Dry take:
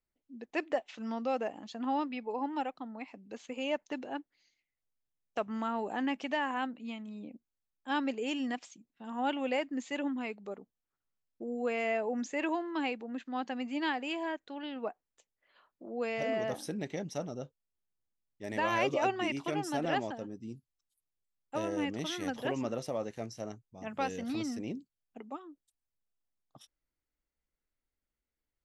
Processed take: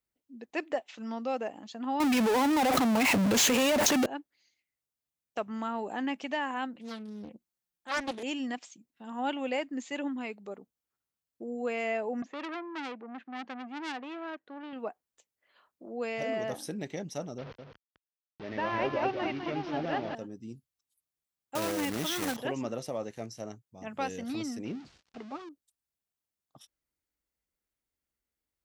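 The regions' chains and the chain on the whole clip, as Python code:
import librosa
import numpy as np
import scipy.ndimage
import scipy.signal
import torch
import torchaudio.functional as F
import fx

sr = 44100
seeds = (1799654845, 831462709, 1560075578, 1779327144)

y = fx.chain(x, sr, fx.power_curve(exponent=0.35),
    fx.env_flatten(amount_pct=100), at=(2.0, 4.06))
y = fx.chain(y, sr, fx.comb(ms=5.7, depth=0.68),
    fx.doppler_dist(depth_ms=0.68), at=(6.75, 8.23))
y = fx.chain(y, sr, fx.bandpass_edges(low_hz=130.0, high_hz=2000.0),
    fx.transformer_sat(knee_hz=2200.0), at=(12.22, 14.73))
y = fx.chain(y, sr, fx.delta_mod(bps=32000, step_db=-37.0),
    fx.air_absorb(metres=250.0),
    fx.echo_single(ms=204, db=-7.0), at=(17.38, 20.15))
y = fx.chain(y, sr, fx.block_float(bits=3),
    fx.peak_eq(hz=1200.0, db=2.5, octaves=1.1),
    fx.env_flatten(amount_pct=50), at=(21.55, 22.37))
y = fx.chain(y, sr, fx.zero_step(step_db=-45.0),
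    fx.lowpass(hz=5600.0, slope=24),
    fx.notch(hz=560.0, q=17.0), at=(24.65, 25.49))
y = scipy.signal.sosfilt(scipy.signal.butter(2, 46.0, 'highpass', fs=sr, output='sos'), y)
y = fx.high_shelf(y, sr, hz=7000.0, db=5.0)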